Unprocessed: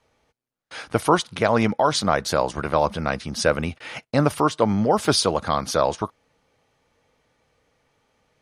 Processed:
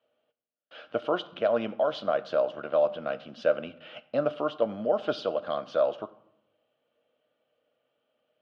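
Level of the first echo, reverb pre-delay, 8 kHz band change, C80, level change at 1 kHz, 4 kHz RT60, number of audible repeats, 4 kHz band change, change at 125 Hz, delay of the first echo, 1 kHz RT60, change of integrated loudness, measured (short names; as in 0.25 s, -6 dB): none, 8 ms, under -30 dB, 19.0 dB, -12.0 dB, 0.55 s, none, -14.0 dB, -20.0 dB, none, 0.80 s, -7.0 dB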